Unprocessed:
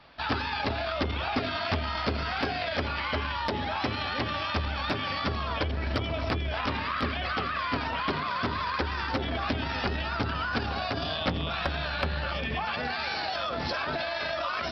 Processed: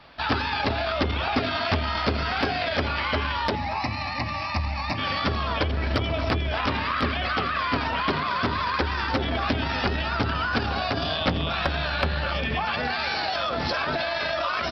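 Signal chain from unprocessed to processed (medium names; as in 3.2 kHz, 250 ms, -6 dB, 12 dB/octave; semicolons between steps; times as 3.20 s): 3.55–4.98 s: static phaser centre 2.2 kHz, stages 8; delay 233 ms -18.5 dB; trim +4.5 dB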